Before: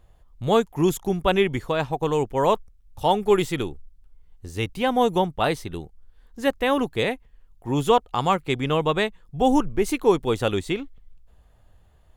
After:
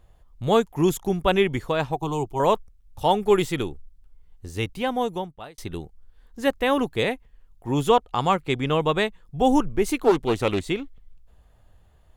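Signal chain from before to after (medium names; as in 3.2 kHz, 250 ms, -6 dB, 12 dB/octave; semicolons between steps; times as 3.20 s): 1.96–2.40 s: static phaser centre 340 Hz, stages 8; 4.56–5.58 s: fade out; 7.88–8.80 s: treble shelf 10 kHz -5 dB; 10.01–10.69 s: loudspeaker Doppler distortion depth 0.29 ms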